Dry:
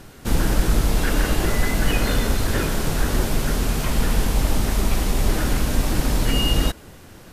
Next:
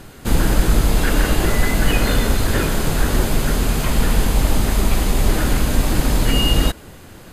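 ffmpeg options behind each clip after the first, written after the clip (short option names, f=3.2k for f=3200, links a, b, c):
-af "bandreject=f=5.6k:w=10,volume=3.5dB"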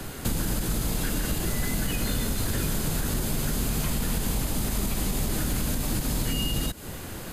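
-filter_complex "[0:a]highshelf=f=7.8k:g=6.5,alimiter=limit=-11.5dB:level=0:latency=1:release=191,acrossover=split=110|220|3300[a][b][c][d];[a]acompressor=threshold=-32dB:ratio=4[e];[b]acompressor=threshold=-34dB:ratio=4[f];[c]acompressor=threshold=-40dB:ratio=4[g];[d]acompressor=threshold=-36dB:ratio=4[h];[e][f][g][h]amix=inputs=4:normalize=0,volume=3dB"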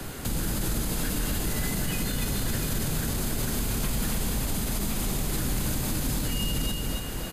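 -filter_complex "[0:a]acrossover=split=210|1800[a][b][c];[b]volume=32.5dB,asoftclip=hard,volume=-32.5dB[d];[a][d][c]amix=inputs=3:normalize=0,aecho=1:1:281|562|843|1124|1405|1686|1967:0.531|0.287|0.155|0.0836|0.0451|0.0244|0.0132,alimiter=limit=-18.5dB:level=0:latency=1:release=35"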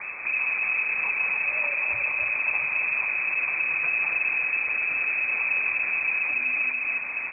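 -af "lowpass=f=2.2k:t=q:w=0.5098,lowpass=f=2.2k:t=q:w=0.6013,lowpass=f=2.2k:t=q:w=0.9,lowpass=f=2.2k:t=q:w=2.563,afreqshift=-2600,volume=2dB"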